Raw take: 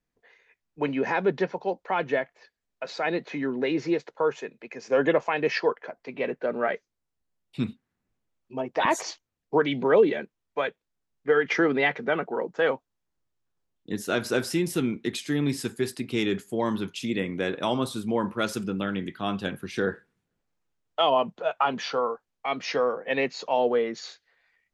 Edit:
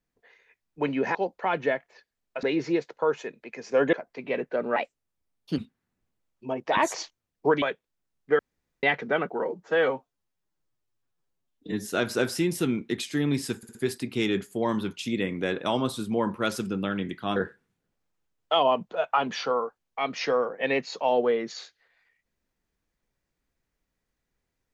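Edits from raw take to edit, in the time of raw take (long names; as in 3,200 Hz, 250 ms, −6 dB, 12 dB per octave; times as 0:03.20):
0:01.15–0:01.61: remove
0:02.89–0:03.61: remove
0:05.11–0:05.83: remove
0:06.66–0:07.66: play speed 122%
0:09.70–0:10.59: remove
0:11.36–0:11.80: fill with room tone
0:12.39–0:14.03: time-stretch 1.5×
0:15.72: stutter 0.06 s, 4 plays
0:19.33–0:19.83: remove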